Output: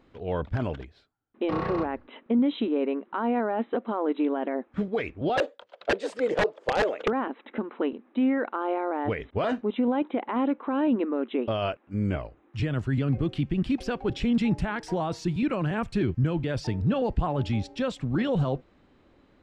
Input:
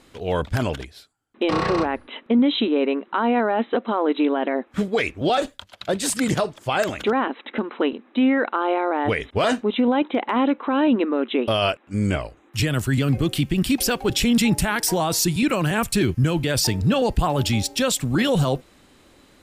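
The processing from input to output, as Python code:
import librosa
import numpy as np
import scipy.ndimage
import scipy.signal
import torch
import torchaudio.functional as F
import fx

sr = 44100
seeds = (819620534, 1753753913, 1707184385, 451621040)

y = fx.highpass_res(x, sr, hz=480.0, q=5.3, at=(5.36, 7.08))
y = (np.mod(10.0 ** (8.5 / 20.0) * y + 1.0, 2.0) - 1.0) / 10.0 ** (8.5 / 20.0)
y = fx.spacing_loss(y, sr, db_at_10k=30)
y = y * 10.0 ** (-4.5 / 20.0)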